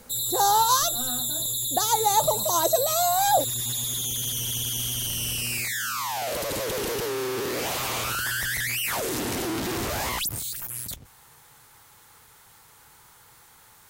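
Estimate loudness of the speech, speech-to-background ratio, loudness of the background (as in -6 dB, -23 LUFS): -23.5 LUFS, 3.0 dB, -26.5 LUFS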